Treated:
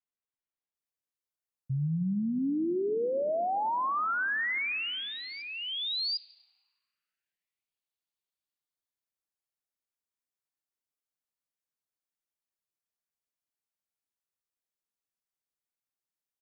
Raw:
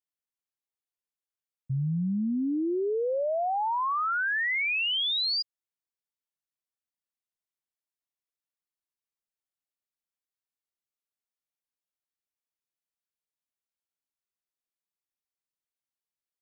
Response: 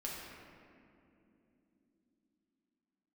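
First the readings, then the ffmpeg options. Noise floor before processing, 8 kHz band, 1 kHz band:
under -85 dBFS, n/a, -2.0 dB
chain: -filter_complex "[0:a]acrossover=split=3100[a][b];[b]adelay=750[c];[a][c]amix=inputs=2:normalize=0,asplit=2[d][e];[1:a]atrim=start_sample=2205[f];[e][f]afir=irnorm=-1:irlink=0,volume=-15.5dB[g];[d][g]amix=inputs=2:normalize=0,volume=-2.5dB"

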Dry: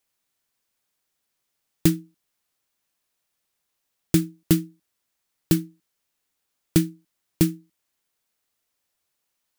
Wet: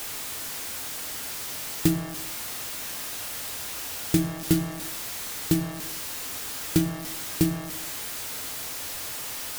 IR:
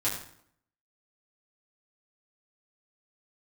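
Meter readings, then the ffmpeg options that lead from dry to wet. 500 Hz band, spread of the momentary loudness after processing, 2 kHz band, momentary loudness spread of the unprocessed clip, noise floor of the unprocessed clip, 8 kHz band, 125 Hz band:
-1.0 dB, 6 LU, +7.5 dB, 12 LU, -78 dBFS, +6.5 dB, -2.0 dB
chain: -filter_complex "[0:a]aeval=exprs='val(0)+0.5*0.0562*sgn(val(0))':c=same,asplit=2[a][b];[1:a]atrim=start_sample=2205,asetrate=38808,aresample=44100[c];[b][c]afir=irnorm=-1:irlink=0,volume=-12dB[d];[a][d]amix=inputs=2:normalize=0,volume=-5.5dB"

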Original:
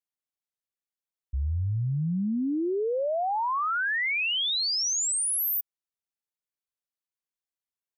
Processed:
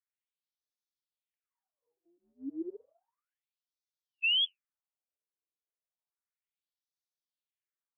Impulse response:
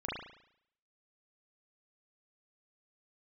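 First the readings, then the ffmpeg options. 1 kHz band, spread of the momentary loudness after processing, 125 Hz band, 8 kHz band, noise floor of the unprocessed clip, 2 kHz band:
under -40 dB, 17 LU, under -40 dB, under -40 dB, under -85 dBFS, -10.5 dB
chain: -filter_complex "[0:a]asplit=2[a][b];[1:a]atrim=start_sample=2205,asetrate=74970,aresample=44100[c];[b][c]afir=irnorm=-1:irlink=0,volume=-19.5dB[d];[a][d]amix=inputs=2:normalize=0,afftfilt=real='re*between(b*sr/1024,400*pow(4800/400,0.5+0.5*sin(2*PI*0.32*pts/sr))/1.41,400*pow(4800/400,0.5+0.5*sin(2*PI*0.32*pts/sr))*1.41)':imag='im*between(b*sr/1024,400*pow(4800/400,0.5+0.5*sin(2*PI*0.32*pts/sr))/1.41,400*pow(4800/400,0.5+0.5*sin(2*PI*0.32*pts/sr))*1.41)':win_size=1024:overlap=0.75"

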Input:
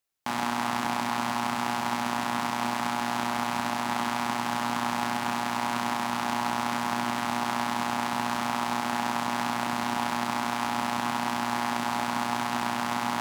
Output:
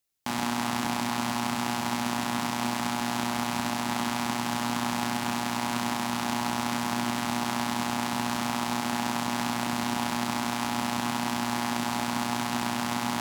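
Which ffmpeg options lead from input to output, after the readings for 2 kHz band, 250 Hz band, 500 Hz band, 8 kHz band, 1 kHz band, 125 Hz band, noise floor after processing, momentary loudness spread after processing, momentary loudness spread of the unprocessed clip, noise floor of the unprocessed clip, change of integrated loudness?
-1.5 dB, +2.5 dB, -0.5 dB, +3.5 dB, -2.5 dB, +3.5 dB, -32 dBFS, 0 LU, 0 LU, -31 dBFS, -0.5 dB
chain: -af "equalizer=f=1.1k:t=o:w=2.6:g=-7,volume=4dB"

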